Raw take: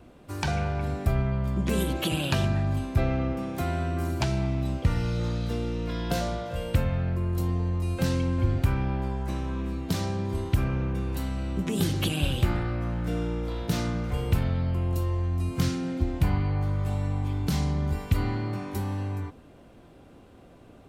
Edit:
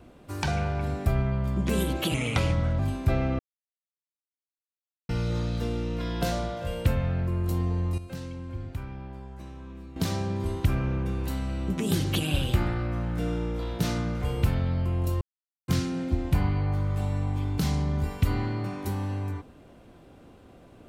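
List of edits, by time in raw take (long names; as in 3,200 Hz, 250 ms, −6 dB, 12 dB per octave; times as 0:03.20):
0:02.14–0:02.68: play speed 83%
0:03.28–0:04.98: silence
0:07.87–0:09.85: clip gain −11.5 dB
0:15.10–0:15.57: silence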